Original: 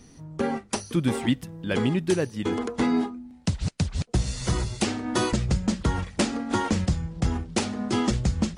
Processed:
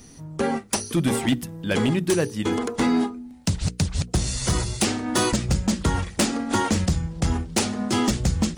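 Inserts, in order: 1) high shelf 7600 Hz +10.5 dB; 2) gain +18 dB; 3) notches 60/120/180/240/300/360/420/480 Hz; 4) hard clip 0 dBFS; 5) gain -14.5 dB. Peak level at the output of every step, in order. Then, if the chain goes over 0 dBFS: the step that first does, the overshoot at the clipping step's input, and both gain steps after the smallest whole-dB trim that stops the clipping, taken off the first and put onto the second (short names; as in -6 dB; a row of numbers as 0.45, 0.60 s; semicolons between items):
-9.0, +9.0, +8.5, 0.0, -14.5 dBFS; step 2, 8.5 dB; step 2 +9 dB, step 5 -5.5 dB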